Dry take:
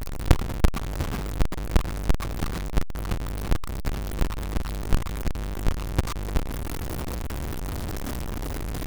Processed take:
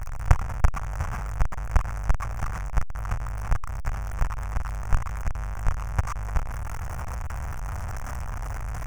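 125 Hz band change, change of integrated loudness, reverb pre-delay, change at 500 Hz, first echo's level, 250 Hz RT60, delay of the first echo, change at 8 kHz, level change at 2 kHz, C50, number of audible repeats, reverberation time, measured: −0.5 dB, −1.0 dB, no reverb audible, −7.5 dB, no echo audible, no reverb audible, no echo audible, −4.0 dB, 0.0 dB, no reverb audible, no echo audible, no reverb audible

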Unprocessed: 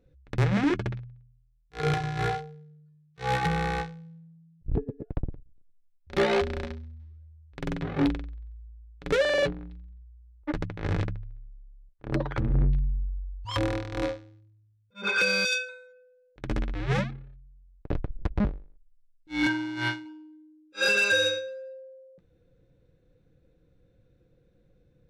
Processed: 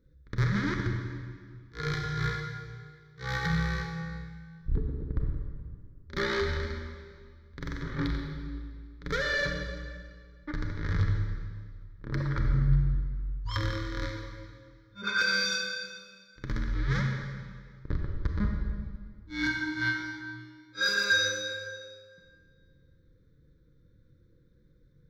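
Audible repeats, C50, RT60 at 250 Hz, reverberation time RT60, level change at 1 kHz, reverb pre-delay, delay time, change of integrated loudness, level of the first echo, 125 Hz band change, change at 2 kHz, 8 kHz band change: no echo audible, 3.0 dB, 2.1 s, 1.9 s, −5.5 dB, 28 ms, no echo audible, −3.0 dB, no echo audible, +0.5 dB, −0.5 dB, 0.0 dB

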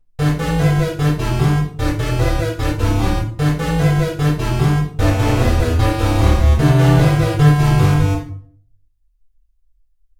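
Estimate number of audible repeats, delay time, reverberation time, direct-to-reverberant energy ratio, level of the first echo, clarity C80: no echo audible, no echo audible, 0.55 s, −8.0 dB, no echo audible, 10.0 dB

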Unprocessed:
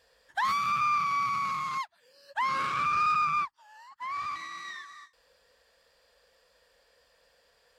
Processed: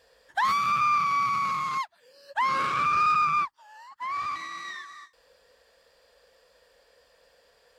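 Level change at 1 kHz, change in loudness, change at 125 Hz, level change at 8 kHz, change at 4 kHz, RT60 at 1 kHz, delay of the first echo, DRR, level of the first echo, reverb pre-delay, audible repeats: +3.5 dB, +3.5 dB, +3.0 dB, can't be measured, +2.5 dB, no reverb audible, no echo audible, no reverb audible, no echo audible, no reverb audible, no echo audible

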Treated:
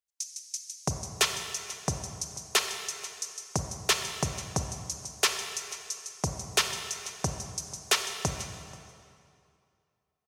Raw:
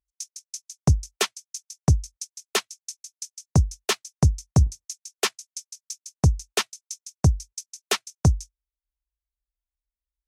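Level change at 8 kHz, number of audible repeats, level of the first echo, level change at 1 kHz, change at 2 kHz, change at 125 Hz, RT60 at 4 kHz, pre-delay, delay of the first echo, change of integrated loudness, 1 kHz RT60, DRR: +1.0 dB, 1, −20.5 dB, −0.5 dB, +0.5 dB, −14.5 dB, 2.0 s, 30 ms, 485 ms, −6.0 dB, 2.5 s, 5.5 dB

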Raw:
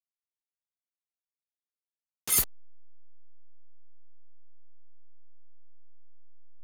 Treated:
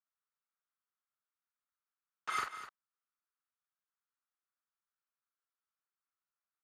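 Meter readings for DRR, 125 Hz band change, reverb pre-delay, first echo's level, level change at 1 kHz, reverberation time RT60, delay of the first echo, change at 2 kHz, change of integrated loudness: no reverb audible, −21.5 dB, no reverb audible, −4.0 dB, +9.0 dB, no reverb audible, 44 ms, +1.0 dB, −14.0 dB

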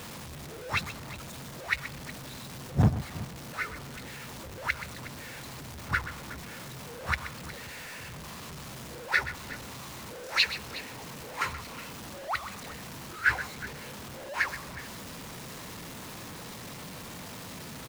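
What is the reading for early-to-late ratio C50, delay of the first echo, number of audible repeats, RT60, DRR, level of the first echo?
no reverb audible, 127 ms, 2, no reverb audible, no reverb audible, −13.0 dB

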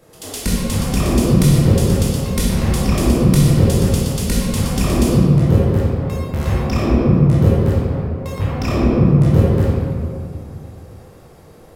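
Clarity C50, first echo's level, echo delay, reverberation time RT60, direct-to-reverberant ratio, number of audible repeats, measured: −2.5 dB, no echo audible, no echo audible, 2.4 s, −6.5 dB, no echo audible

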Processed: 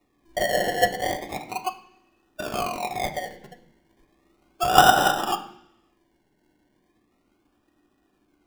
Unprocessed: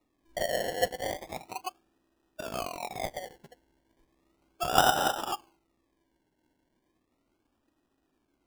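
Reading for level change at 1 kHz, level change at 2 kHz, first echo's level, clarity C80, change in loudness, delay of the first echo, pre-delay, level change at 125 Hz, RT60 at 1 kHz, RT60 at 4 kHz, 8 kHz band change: +9.0 dB, +9.0 dB, no echo audible, 14.0 dB, +7.5 dB, no echo audible, 3 ms, +7.5 dB, 0.75 s, 1.0 s, +5.5 dB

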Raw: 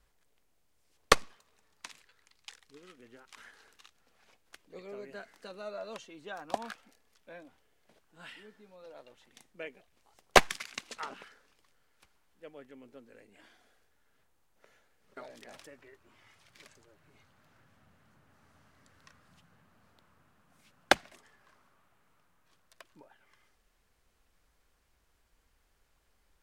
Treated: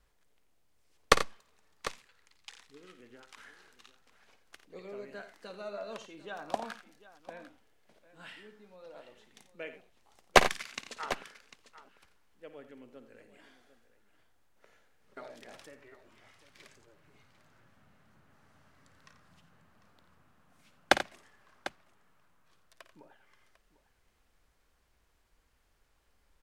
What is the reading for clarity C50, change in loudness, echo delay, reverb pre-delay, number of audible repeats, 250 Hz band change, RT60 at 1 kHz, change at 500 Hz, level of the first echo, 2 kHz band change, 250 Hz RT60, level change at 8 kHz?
no reverb audible, −0.5 dB, 54 ms, no reverb audible, 3, +0.5 dB, no reverb audible, +0.5 dB, −13.0 dB, +0.5 dB, no reverb audible, −1.0 dB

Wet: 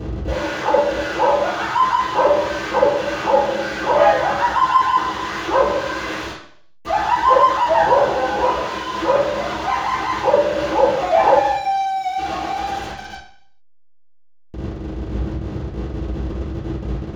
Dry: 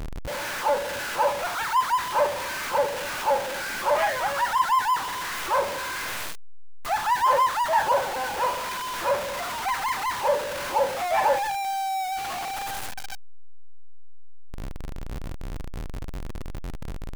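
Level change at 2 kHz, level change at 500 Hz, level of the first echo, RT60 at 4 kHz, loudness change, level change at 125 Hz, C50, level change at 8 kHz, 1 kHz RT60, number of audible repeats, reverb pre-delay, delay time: +4.5 dB, +10.0 dB, no echo audible, 0.65 s, +7.0 dB, +12.0 dB, 4.5 dB, −3.5 dB, 0.60 s, no echo audible, 3 ms, no echo audible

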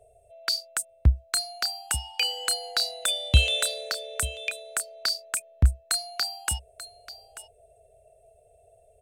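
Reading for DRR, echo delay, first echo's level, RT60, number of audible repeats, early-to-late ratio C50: no reverb audible, 888 ms, −15.0 dB, no reverb audible, 1, no reverb audible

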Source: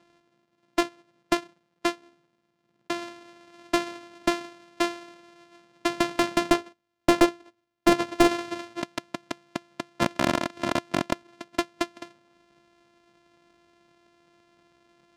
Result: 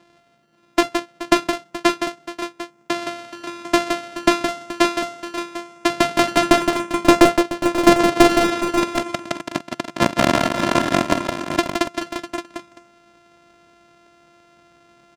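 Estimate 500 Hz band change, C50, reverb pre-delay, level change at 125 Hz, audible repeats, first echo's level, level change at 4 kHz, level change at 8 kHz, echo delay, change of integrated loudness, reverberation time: +9.0 dB, no reverb audible, no reverb audible, +9.0 dB, 6, −16.5 dB, +8.5 dB, +9.0 dB, 45 ms, +8.0 dB, no reverb audible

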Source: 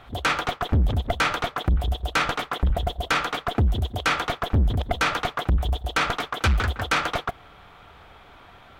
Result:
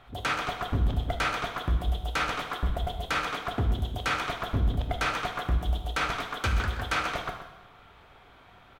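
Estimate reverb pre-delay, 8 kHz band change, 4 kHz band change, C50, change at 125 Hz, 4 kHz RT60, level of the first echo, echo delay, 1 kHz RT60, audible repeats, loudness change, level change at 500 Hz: 5 ms, −5.5 dB, −5.5 dB, 6.0 dB, −5.5 dB, 0.90 s, −10.5 dB, 127 ms, 0.95 s, 1, −5.0 dB, −5.5 dB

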